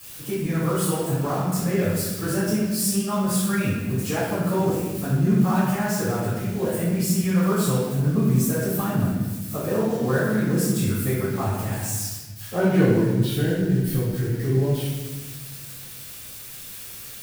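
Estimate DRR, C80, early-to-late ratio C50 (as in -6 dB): -12.5 dB, 1.5 dB, -1.0 dB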